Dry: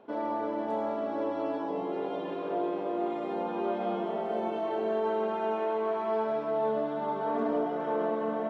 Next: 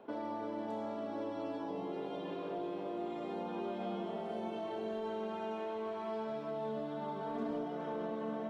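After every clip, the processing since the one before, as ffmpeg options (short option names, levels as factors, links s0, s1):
-filter_complex "[0:a]acrossover=split=210|3000[s0][s1][s2];[s1]acompressor=threshold=0.00794:ratio=3[s3];[s0][s3][s2]amix=inputs=3:normalize=0"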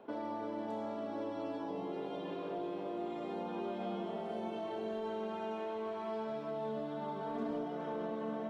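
-af anull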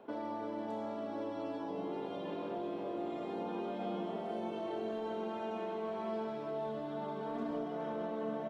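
-filter_complex "[0:a]asplit=2[s0][s1];[s1]adelay=1691,volume=0.447,highshelf=f=4000:g=-38[s2];[s0][s2]amix=inputs=2:normalize=0"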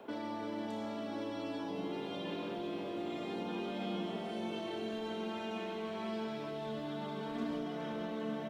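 -filter_complex "[0:a]acrossover=split=320|1800[s0][s1][s2];[s1]alimiter=level_in=8.41:limit=0.0631:level=0:latency=1,volume=0.119[s3];[s2]acontrast=39[s4];[s0][s3][s4]amix=inputs=3:normalize=0,volume=1.5"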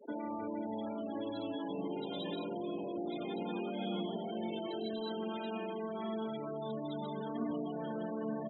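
-af "afftfilt=real='re*gte(hypot(re,im),0.0112)':imag='im*gte(hypot(re,im),0.0112)':win_size=1024:overlap=0.75,aexciter=amount=10.7:drive=9.5:freq=4600,volume=1.12"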